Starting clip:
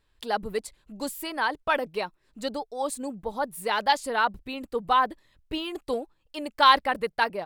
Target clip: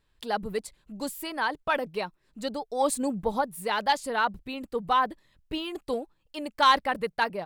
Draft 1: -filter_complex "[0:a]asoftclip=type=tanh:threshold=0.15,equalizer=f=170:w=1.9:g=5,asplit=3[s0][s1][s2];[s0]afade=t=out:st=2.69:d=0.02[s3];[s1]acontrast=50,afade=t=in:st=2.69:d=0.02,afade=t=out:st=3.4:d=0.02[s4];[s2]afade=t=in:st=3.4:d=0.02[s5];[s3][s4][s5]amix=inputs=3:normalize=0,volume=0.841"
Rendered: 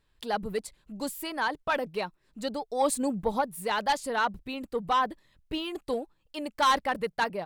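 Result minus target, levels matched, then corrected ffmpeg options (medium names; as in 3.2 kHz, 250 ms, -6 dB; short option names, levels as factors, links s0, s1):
saturation: distortion +11 dB
-filter_complex "[0:a]asoftclip=type=tanh:threshold=0.398,equalizer=f=170:w=1.9:g=5,asplit=3[s0][s1][s2];[s0]afade=t=out:st=2.69:d=0.02[s3];[s1]acontrast=50,afade=t=in:st=2.69:d=0.02,afade=t=out:st=3.4:d=0.02[s4];[s2]afade=t=in:st=3.4:d=0.02[s5];[s3][s4][s5]amix=inputs=3:normalize=0,volume=0.841"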